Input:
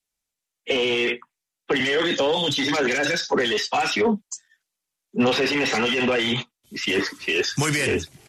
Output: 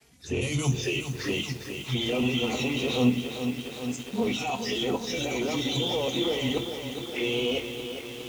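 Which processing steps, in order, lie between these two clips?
played backwards from end to start
flanger swept by the level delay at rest 4.8 ms, full sweep at −21 dBFS
on a send at −7.5 dB: convolution reverb RT60 0.40 s, pre-delay 3 ms
on the sum: feedback echo at a low word length 410 ms, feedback 80%, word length 6 bits, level −8 dB
level −6.5 dB

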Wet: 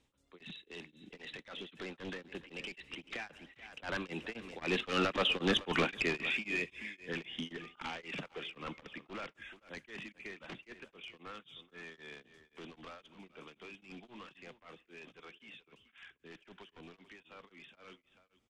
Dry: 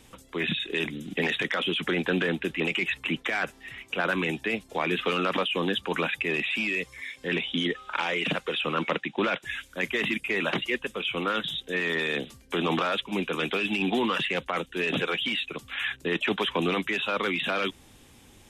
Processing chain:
wavefolder on the positive side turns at −22.5 dBFS
source passing by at 0:05.49, 14 m/s, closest 9.3 metres
low-pass filter 7,000 Hz 12 dB per octave
single-tap delay 432 ms −13.5 dB
on a send at −20 dB: convolution reverb RT60 1.4 s, pre-delay 47 ms
on the sum: tremolo along a rectified sine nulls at 3.8 Hz

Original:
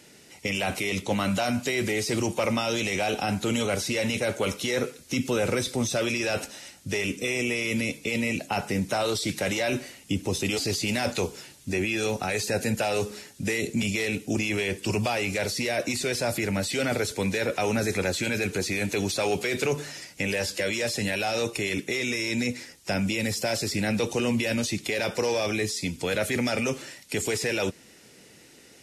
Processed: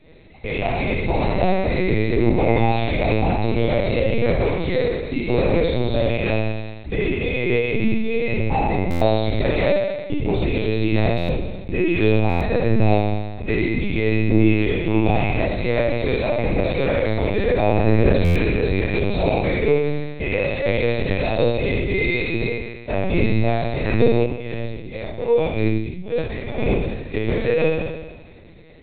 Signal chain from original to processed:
loose part that buzzes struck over −35 dBFS, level −32 dBFS
low-shelf EQ 99 Hz −3 dB
tuned comb filter 160 Hz, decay 0.18 s, harmonics all, mix 60%
flutter between parallel walls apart 4.7 metres, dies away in 1.3 s
0:24.26–0:26.59: downward expander −20 dBFS
parametric band 60 Hz −9 dB 0.69 octaves
convolution reverb, pre-delay 90 ms, DRR 13.5 dB
linear-prediction vocoder at 8 kHz pitch kept
buffer that repeats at 0:08.90/0:11.17/0:12.29/0:18.24, samples 512, times 9
every ending faded ahead of time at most 150 dB per second

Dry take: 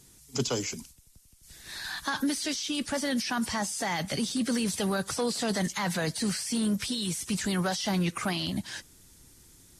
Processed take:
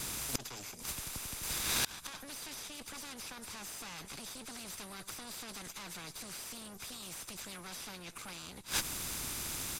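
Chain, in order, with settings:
lower of the sound and its delayed copy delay 0.81 ms
in parallel at +2.5 dB: brickwall limiter −28 dBFS, peak gain reduction 9.5 dB
on the sum: gate with flip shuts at −22 dBFS, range −33 dB
reversed playback
upward compression, threshold −55 dBFS
reversed playback
downsampling to 32,000 Hz
every bin compressed towards the loudest bin 2 to 1
level +6 dB

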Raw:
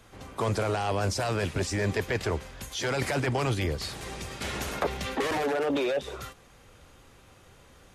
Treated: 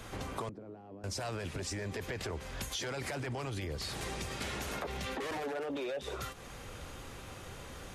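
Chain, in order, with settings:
brickwall limiter −25.5 dBFS, peak gain reduction 9.5 dB
downward compressor 5 to 1, threshold −45 dBFS, peak gain reduction 14 dB
0:00.49–0:01.04: resonant band-pass 260 Hz, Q 2.2
level +8 dB

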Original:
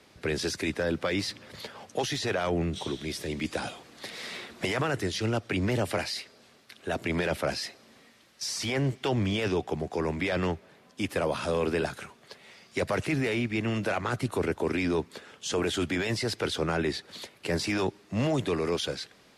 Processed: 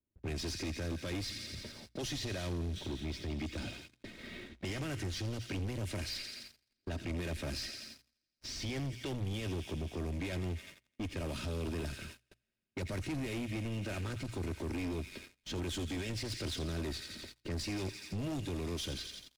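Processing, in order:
variable-slope delta modulation 64 kbit/s
low-pass that shuts in the quiet parts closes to 1,000 Hz, open at −24 dBFS
on a send: delay with a high-pass on its return 85 ms, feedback 79%, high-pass 1,700 Hz, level −8 dB
on the sum: noise gate −45 dBFS, range −13 dB
guitar amp tone stack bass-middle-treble 10-0-1
comb filter 3.2 ms, depth 44%
downward compressor 2 to 1, threshold −50 dBFS, peak gain reduction 7 dB
leveller curve on the samples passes 3
mains-hum notches 60/120 Hz
level +7 dB

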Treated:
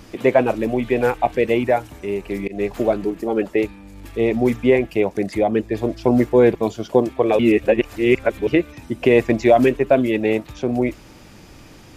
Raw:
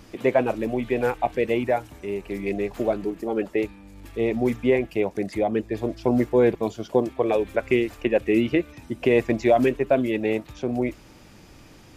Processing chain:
0:02.37–0:02.77: volume swells 152 ms
0:07.39–0:08.47: reverse
level +5 dB

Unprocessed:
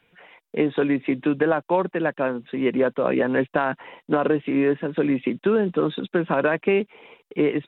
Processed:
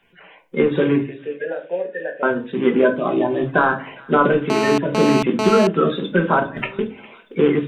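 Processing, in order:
spectral magnitudes quantised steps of 30 dB
dynamic equaliser 1,300 Hz, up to +4 dB, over −36 dBFS, Q 0.79
0:01.03–0:02.23: formant filter e
0:02.95–0:03.47: phaser with its sweep stopped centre 320 Hz, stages 8
0:06.39–0:06.79: compressor whose output falls as the input rises −32 dBFS, ratio −0.5
delay with a high-pass on its return 407 ms, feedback 60%, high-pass 1,800 Hz, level −19 dB
rectangular room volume 200 cubic metres, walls furnished, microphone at 1.2 metres
0:04.50–0:05.67: phone interference −22 dBFS
level +2 dB

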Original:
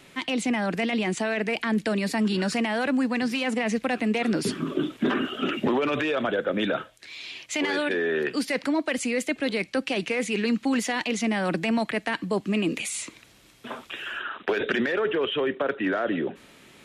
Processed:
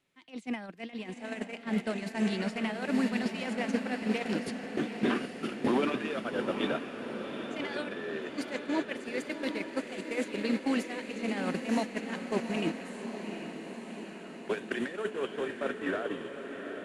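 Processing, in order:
loose part that buzzes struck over −30 dBFS, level −37 dBFS
feedback delay with all-pass diffusion 992 ms, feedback 44%, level −6 dB
noise gate −23 dBFS, range −22 dB
feedback delay with all-pass diffusion 781 ms, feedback 66%, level −8 dB
level −4.5 dB

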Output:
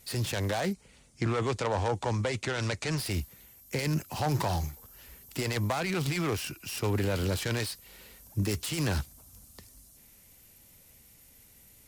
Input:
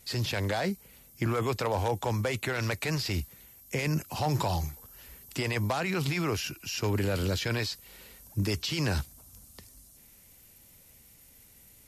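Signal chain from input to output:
phase distortion by the signal itself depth 0.17 ms
0:00.73–0:02.98: Butterworth low-pass 9,000 Hz 36 dB per octave

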